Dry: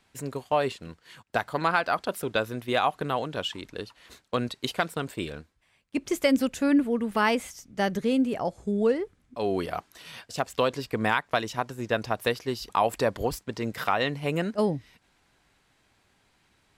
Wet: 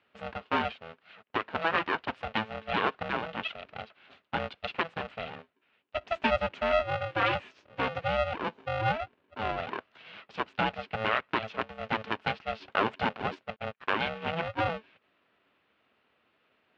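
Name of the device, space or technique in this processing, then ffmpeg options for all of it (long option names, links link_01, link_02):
ring modulator pedal into a guitar cabinet: -filter_complex "[0:a]aeval=exprs='val(0)*sgn(sin(2*PI*330*n/s))':channel_layout=same,highpass=100,equalizer=frequency=140:width_type=q:width=4:gain=-5,equalizer=frequency=650:width_type=q:width=4:gain=3,equalizer=frequency=1400:width_type=q:width=4:gain=4,equalizer=frequency=2700:width_type=q:width=4:gain=5,lowpass=frequency=3400:width=0.5412,lowpass=frequency=3400:width=1.3066,asettb=1/sr,asplit=3[link_01][link_02][link_03];[link_01]atrim=end=13.564[link_04];[link_02]atrim=start=13.56:end=14.01,asetpts=PTS-STARTPTS,afade=type=in:duration=0.004:curve=qsin,afade=type=out:start_time=0.446:duration=0.004:curve=qsin,agate=range=-50dB:threshold=-29dB:ratio=16:detection=peak[link_05];[link_03]atrim=start=14.006[link_06];[link_04][link_05]acrossfade=duration=0.004:curve1=hsin:curve2=qsin[link_07];[link_07][link_06]acrossfade=duration=0.004:curve1=qsin:curve2=hsin,volume=-5dB"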